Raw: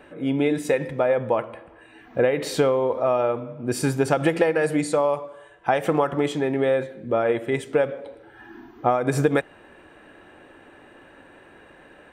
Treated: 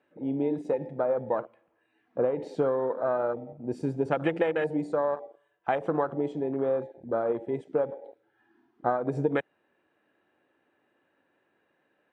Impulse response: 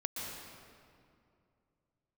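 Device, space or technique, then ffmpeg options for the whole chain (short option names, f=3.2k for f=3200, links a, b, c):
over-cleaned archive recording: -af "highpass=130,lowpass=6.4k,afwtdn=0.0447,volume=-6dB"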